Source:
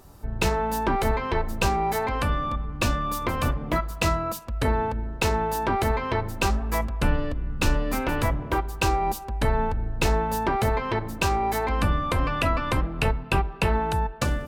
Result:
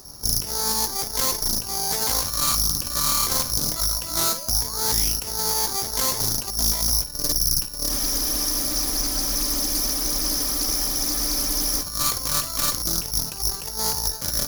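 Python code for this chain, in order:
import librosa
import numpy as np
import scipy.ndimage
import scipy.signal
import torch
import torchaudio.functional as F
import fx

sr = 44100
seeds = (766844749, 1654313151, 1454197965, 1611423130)

p1 = fx.peak_eq(x, sr, hz=72.0, db=-7.0, octaves=0.27)
p2 = fx.over_compress(p1, sr, threshold_db=-28.0, ratio=-0.5)
p3 = fx.tube_stage(p2, sr, drive_db=28.0, bias=0.8)
p4 = fx.spec_paint(p3, sr, seeds[0], shape='rise', start_s=4.09, length_s=1.67, low_hz=280.0, high_hz=11000.0, level_db=-46.0)
p5 = p4 + fx.room_flutter(p4, sr, wall_m=9.2, rt60_s=0.25, dry=0)
p6 = (np.kron(scipy.signal.resample_poly(p5, 1, 8), np.eye(8)[0]) * 8)[:len(p5)]
p7 = fx.spec_freeze(p6, sr, seeds[1], at_s=7.92, hold_s=3.89)
p8 = fx.doppler_dist(p7, sr, depth_ms=0.43)
y = p8 * 10.0 ** (2.5 / 20.0)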